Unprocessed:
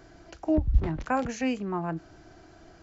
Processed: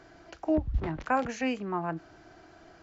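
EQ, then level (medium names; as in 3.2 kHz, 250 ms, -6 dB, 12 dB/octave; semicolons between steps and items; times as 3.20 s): low-pass 3.2 kHz 6 dB/octave; bass shelf 63 Hz -6 dB; bass shelf 490 Hz -7 dB; +3.0 dB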